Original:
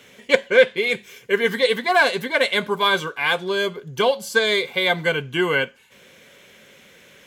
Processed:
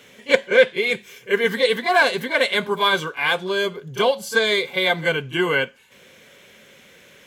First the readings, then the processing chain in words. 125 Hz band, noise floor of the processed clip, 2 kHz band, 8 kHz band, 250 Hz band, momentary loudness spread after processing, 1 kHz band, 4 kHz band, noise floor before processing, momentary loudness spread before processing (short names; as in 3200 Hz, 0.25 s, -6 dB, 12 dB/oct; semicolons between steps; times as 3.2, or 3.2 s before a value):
0.0 dB, -50 dBFS, 0.0 dB, 0.0 dB, 0.0 dB, 6 LU, 0.0 dB, 0.0 dB, -51 dBFS, 7 LU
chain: pre-echo 32 ms -14 dB